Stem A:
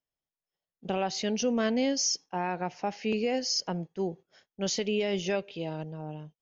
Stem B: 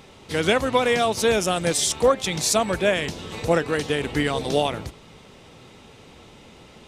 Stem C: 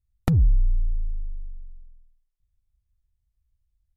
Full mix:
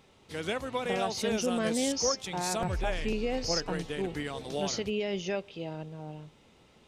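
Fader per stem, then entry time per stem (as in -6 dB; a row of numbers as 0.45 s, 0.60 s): -3.0 dB, -13.0 dB, -16.5 dB; 0.00 s, 0.00 s, 2.35 s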